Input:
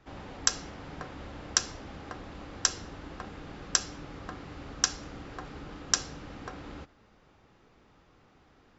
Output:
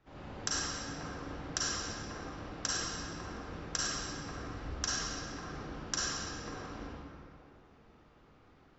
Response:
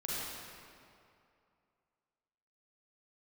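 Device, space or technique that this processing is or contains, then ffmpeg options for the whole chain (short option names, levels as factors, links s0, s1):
swimming-pool hall: -filter_complex "[0:a]asettb=1/sr,asplit=3[s0][s1][s2];[s0]atrim=end=4.114[s3];[s1]atrim=start=4.11:end=4.69,asetpts=PTS-STARTPTS,afade=t=in:d=0.004:c=qsin,afade=t=out:st=0.576:d=0.004:c=qsin,asubboost=boost=11:cutoff=120[s4];[s2]atrim=start=4.686[s5];[s3][s4]acrossfade=d=0.004:c1=hsin:c2=qsin[s6];[s6][s5]acrossfade=d=0.004:c1=qsin:c2=hsin[s7];[1:a]atrim=start_sample=2205[s8];[s7][s8]afir=irnorm=-1:irlink=0,highshelf=f=5400:g=-4.5,volume=0.562"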